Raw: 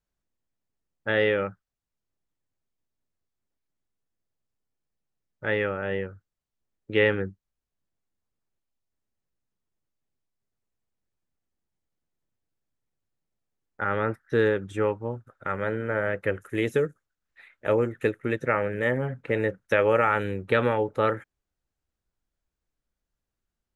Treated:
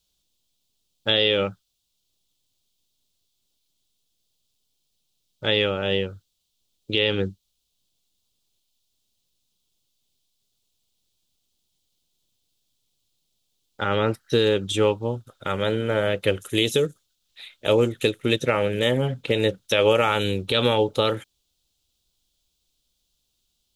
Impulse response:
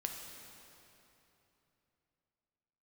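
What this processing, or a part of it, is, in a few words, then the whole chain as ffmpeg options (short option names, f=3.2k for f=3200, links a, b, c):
over-bright horn tweeter: -filter_complex "[0:a]highshelf=f=2.5k:t=q:w=3:g=11.5,alimiter=limit=-13dB:level=0:latency=1:release=135,asettb=1/sr,asplit=3[a][b][c];[a]atrim=end=13.884[d];[b]atrim=start=13.88:end=14.68,asetpts=PTS-STARTPTS,afade=t=in:d=0.004:c=qsin,afade=t=out:st=0.796:d=0.004:c=qsin,bandreject=f=3.5k:w=7.4[e];[c]atrim=start=14.676[f];[d][e]acrossfade=d=0.004:c1=hsin:c2=qsin[g];[g][f]acrossfade=d=0.004:c1=qsin:c2=hsin,volume=5.5dB"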